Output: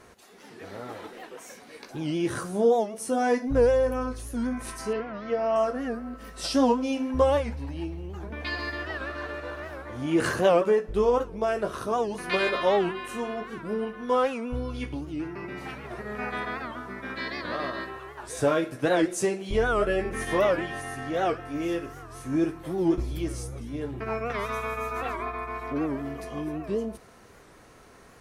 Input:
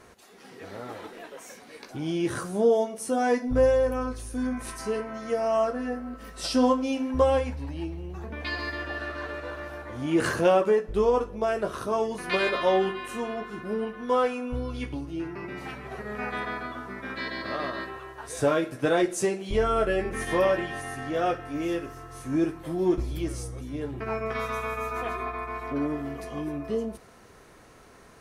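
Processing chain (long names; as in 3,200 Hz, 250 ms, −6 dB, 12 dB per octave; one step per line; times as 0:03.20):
0:04.93–0:05.56: low-pass filter 4,400 Hz 24 dB per octave
wow of a warped record 78 rpm, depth 160 cents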